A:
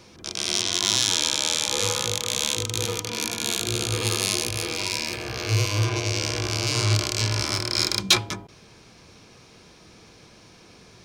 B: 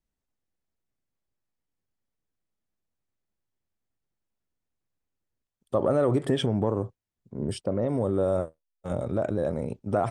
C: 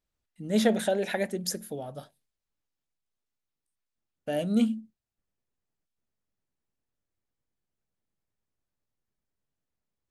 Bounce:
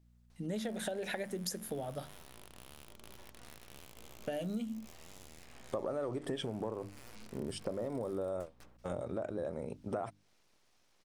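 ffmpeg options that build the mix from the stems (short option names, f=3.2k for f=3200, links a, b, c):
-filter_complex "[0:a]acompressor=threshold=-28dB:ratio=6,aeval=exprs='abs(val(0))':c=same,adelay=300,volume=-19.5dB[a];[1:a]equalizer=f=110:t=o:w=2.3:g=-6.5,volume=0dB[b];[2:a]acompressor=threshold=-28dB:ratio=6,aeval=exprs='val(0)+0.000562*(sin(2*PI*60*n/s)+sin(2*PI*2*60*n/s)/2+sin(2*PI*3*60*n/s)/3+sin(2*PI*4*60*n/s)/4+sin(2*PI*5*60*n/s)/5)':c=same,volume=2dB[c];[a][b][c]amix=inputs=3:normalize=0,bandreject=f=50:t=h:w=6,bandreject=f=100:t=h:w=6,bandreject=f=150:t=h:w=6,bandreject=f=200:t=h:w=6,bandreject=f=250:t=h:w=6,bandreject=f=300:t=h:w=6,acompressor=threshold=-36dB:ratio=4"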